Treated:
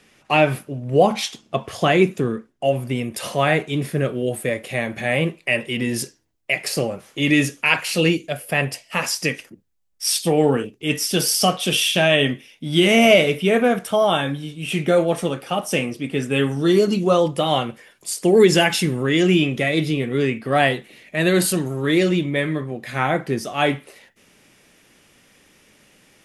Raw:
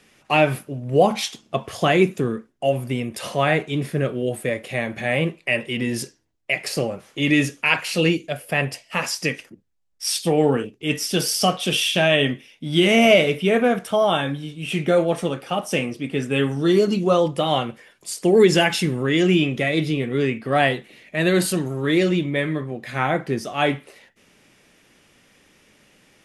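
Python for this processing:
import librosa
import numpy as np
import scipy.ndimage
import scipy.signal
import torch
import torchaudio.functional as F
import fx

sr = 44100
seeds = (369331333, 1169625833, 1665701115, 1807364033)

y = fx.high_shelf(x, sr, hz=9500.0, db=fx.steps((0.0, -2.5), (2.95, 7.0)))
y = y * librosa.db_to_amplitude(1.0)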